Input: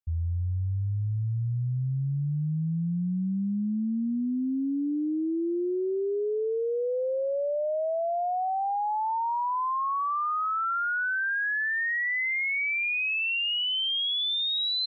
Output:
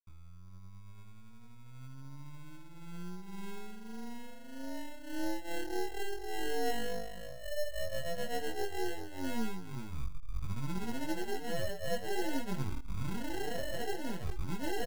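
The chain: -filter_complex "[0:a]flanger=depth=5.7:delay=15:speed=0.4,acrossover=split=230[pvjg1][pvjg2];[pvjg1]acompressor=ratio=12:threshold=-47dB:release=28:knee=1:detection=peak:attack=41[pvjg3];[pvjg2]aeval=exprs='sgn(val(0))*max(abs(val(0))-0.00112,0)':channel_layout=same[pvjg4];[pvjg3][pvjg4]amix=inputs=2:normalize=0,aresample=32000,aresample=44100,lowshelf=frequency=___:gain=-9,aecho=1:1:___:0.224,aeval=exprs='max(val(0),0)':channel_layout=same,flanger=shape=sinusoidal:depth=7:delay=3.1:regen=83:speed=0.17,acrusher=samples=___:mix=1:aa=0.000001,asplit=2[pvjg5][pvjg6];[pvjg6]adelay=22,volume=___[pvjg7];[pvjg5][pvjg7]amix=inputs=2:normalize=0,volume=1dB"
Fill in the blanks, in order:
65, 399, 37, -4.5dB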